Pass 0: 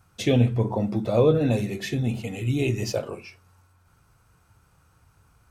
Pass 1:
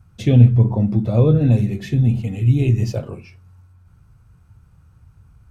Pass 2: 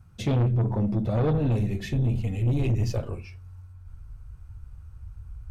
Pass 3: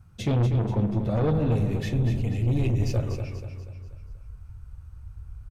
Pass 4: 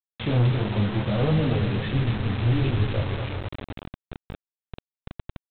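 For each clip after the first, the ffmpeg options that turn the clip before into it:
-af "bass=f=250:g=15,treble=f=4000:g=-3,volume=0.75"
-af "asubboost=boost=10.5:cutoff=56,asoftclip=type=tanh:threshold=0.133,volume=0.794"
-af "aecho=1:1:242|484|726|968|1210:0.398|0.179|0.0806|0.0363|0.0163"
-af "flanger=delay=19:depth=5.9:speed=1.4,aresample=8000,acrusher=bits=5:mix=0:aa=0.000001,aresample=44100,volume=1.5"

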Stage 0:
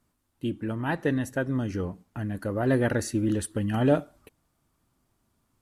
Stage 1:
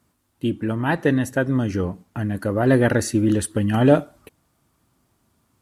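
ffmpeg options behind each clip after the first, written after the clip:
-af "highpass=56,volume=2.24"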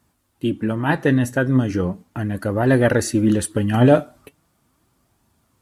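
-af "flanger=delay=1.1:depth=7.2:regen=66:speed=0.38:shape=sinusoidal,volume=2"

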